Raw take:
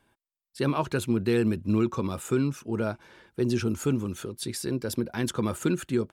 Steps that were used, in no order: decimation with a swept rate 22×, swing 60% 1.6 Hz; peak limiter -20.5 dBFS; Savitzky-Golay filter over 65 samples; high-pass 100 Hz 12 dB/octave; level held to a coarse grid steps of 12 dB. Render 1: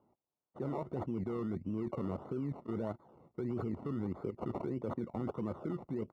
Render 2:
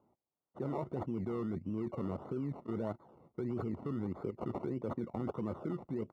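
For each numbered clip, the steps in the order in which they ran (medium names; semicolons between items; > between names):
decimation with a swept rate > high-pass > peak limiter > level held to a coarse grid > Savitzky-Golay filter; decimation with a swept rate > peak limiter > Savitzky-Golay filter > level held to a coarse grid > high-pass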